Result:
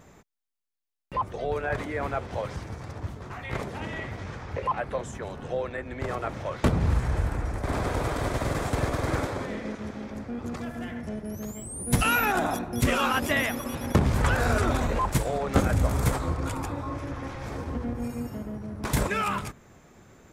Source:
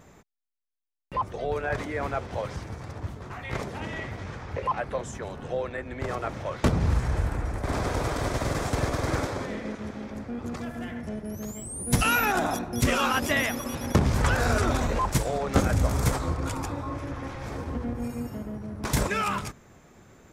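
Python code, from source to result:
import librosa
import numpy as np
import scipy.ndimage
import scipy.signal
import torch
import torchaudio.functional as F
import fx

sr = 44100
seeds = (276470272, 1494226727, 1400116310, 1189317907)

y = fx.dynamic_eq(x, sr, hz=5600.0, q=1.7, threshold_db=-51.0, ratio=4.0, max_db=-5)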